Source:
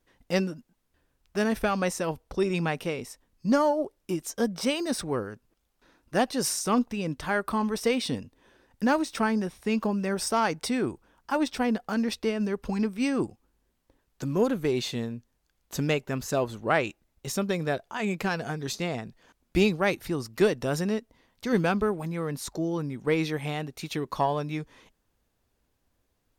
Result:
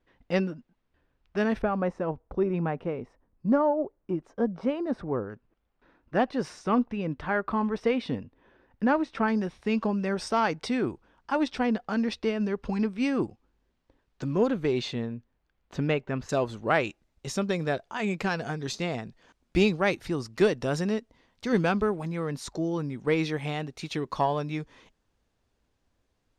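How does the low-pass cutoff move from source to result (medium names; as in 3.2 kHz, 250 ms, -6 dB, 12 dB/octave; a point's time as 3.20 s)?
3.2 kHz
from 1.62 s 1.2 kHz
from 5.30 s 2.3 kHz
from 9.28 s 4.5 kHz
from 14.93 s 2.7 kHz
from 16.29 s 6.9 kHz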